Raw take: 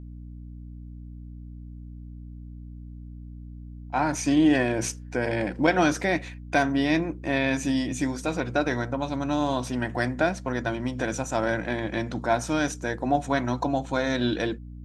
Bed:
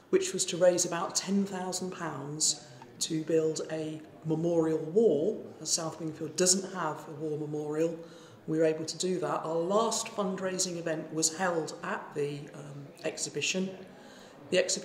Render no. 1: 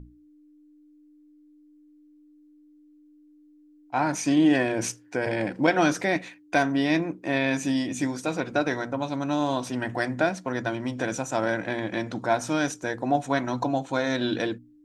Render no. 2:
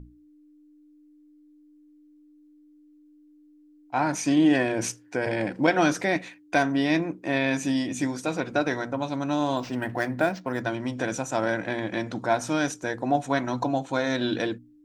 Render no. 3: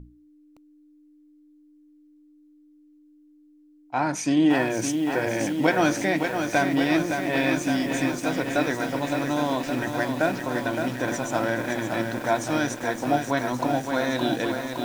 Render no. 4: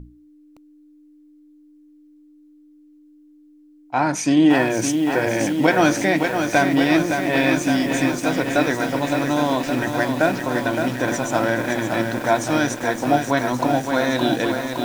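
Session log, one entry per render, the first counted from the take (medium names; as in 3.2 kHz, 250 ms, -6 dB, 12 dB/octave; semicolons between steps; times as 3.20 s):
hum notches 60/120/180/240 Hz
9.57–10.61 s: decimation joined by straight lines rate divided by 4×
bit-crushed delay 565 ms, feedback 80%, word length 7-bit, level -6 dB
trim +5 dB; peak limiter -3 dBFS, peak gain reduction 1.5 dB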